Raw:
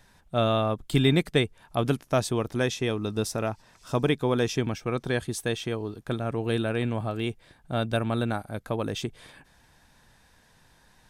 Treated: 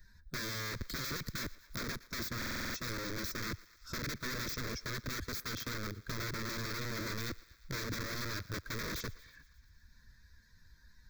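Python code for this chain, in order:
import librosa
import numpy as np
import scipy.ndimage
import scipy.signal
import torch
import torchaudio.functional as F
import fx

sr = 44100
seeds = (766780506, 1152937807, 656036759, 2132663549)

p1 = fx.bin_expand(x, sr, power=1.5)
p2 = fx.over_compress(p1, sr, threshold_db=-36.0, ratio=-1.0)
p3 = p1 + F.gain(torch.from_numpy(p2), 2.0).numpy()
p4 = fx.low_shelf(p3, sr, hz=110.0, db=8.5)
p5 = (np.mod(10.0 ** (23.5 / 20.0) * p4 + 1.0, 2.0) - 1.0) / 10.0 ** (23.5 / 20.0)
p6 = fx.peak_eq(p5, sr, hz=850.0, db=-2.5, octaves=0.77)
p7 = fx.fixed_phaser(p6, sr, hz=2900.0, stages=6)
p8 = fx.echo_thinned(p7, sr, ms=116, feedback_pct=58, hz=590.0, wet_db=-20.5)
p9 = fx.buffer_glitch(p8, sr, at_s=(2.37,), block=2048, repeats=7)
p10 = fx.band_squash(p9, sr, depth_pct=40)
y = F.gain(torch.from_numpy(p10), -7.5).numpy()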